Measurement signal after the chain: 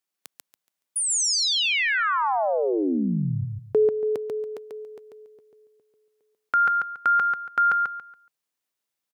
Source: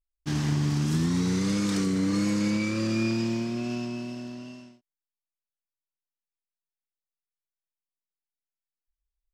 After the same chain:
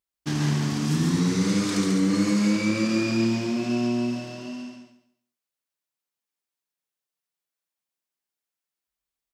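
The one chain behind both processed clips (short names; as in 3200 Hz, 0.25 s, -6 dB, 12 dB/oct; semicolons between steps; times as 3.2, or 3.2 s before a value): HPF 130 Hz 12 dB/oct; in parallel at -1.5 dB: compressor, threshold -34 dBFS; on the sum: feedback echo 0.141 s, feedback 25%, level -3.5 dB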